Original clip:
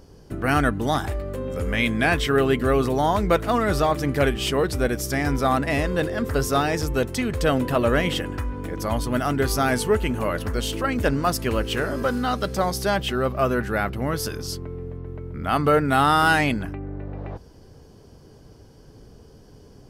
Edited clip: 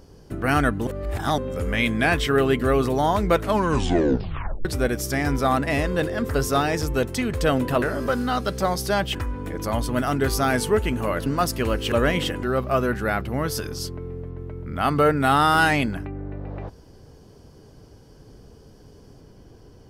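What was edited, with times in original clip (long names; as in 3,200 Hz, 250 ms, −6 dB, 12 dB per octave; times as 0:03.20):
0:00.87–0:01.38: reverse
0:03.40: tape stop 1.25 s
0:07.82–0:08.33: swap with 0:11.78–0:13.11
0:10.44–0:11.12: remove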